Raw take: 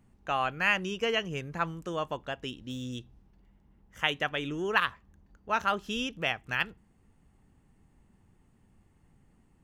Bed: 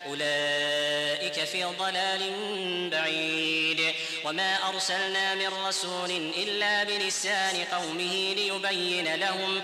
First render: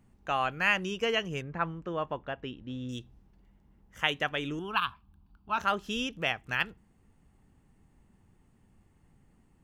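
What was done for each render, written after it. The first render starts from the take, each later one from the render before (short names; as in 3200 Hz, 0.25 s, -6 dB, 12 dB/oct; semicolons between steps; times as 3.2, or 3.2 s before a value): 1.42–2.89 LPF 2400 Hz; 4.59–5.58 fixed phaser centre 1900 Hz, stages 6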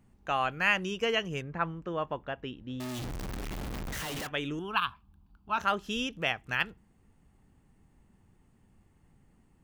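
2.8–4.27 infinite clipping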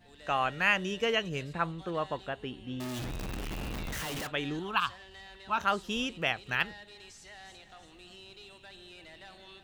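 add bed -23 dB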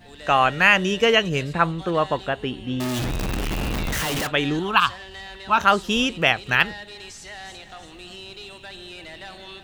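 gain +11.5 dB; limiter -2 dBFS, peak gain reduction 2 dB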